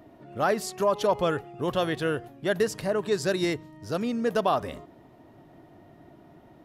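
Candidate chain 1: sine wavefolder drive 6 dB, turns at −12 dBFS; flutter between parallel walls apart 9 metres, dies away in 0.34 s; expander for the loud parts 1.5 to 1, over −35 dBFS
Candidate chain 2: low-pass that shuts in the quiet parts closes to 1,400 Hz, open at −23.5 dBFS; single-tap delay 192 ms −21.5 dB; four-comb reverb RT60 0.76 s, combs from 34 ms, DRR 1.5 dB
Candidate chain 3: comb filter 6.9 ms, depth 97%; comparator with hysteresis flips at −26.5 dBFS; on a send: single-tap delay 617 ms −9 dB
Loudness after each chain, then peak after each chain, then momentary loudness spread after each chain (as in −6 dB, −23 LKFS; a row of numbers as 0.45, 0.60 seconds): −21.0, −25.0, −28.0 LKFS; −9.5, −7.5, −17.5 dBFS; 6, 8, 10 LU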